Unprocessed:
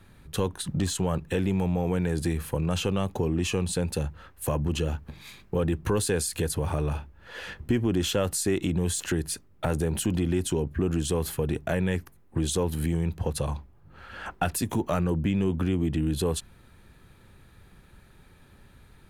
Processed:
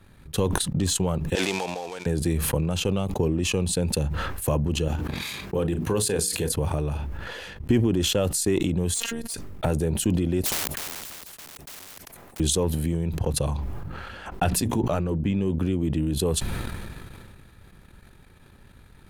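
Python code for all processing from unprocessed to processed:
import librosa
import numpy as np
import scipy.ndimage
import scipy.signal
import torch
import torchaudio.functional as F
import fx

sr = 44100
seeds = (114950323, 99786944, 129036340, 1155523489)

y = fx.chain(x, sr, fx.dead_time(dead_ms=0.11),
    fx.bandpass_edges(low_hz=770.0, high_hz=7500.0),
    fx.high_shelf(hz=5700.0, db=6.0), at=(1.35, 2.06))
y = fx.chain(y, sr, fx.highpass(hz=120.0, slope=6),
    fx.hum_notches(base_hz=60, count=8),
    fx.doubler(ms=37.0, db=-14.0), at=(4.88, 6.52))
y = fx.chain(y, sr, fx.low_shelf(hz=490.0, db=-5.5),
    fx.robotise(hz=231.0),
    fx.clip_hard(threshold_db=-21.5), at=(8.94, 9.34))
y = fx.chain(y, sr, fx.peak_eq(hz=670.0, db=7.5, octaves=0.61),
    fx.overflow_wrap(gain_db=26.5),
    fx.spectral_comp(ratio=4.0), at=(10.42, 12.4))
y = fx.chain(y, sr, fx.high_shelf(hz=7000.0, db=-7.5),
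    fx.hum_notches(base_hz=60, count=5), at=(14.44, 15.44))
y = fx.dynamic_eq(y, sr, hz=1500.0, q=1.2, threshold_db=-49.0, ratio=4.0, max_db=-5)
y = fx.transient(y, sr, attack_db=4, sustain_db=-11)
y = fx.sustainer(y, sr, db_per_s=23.0)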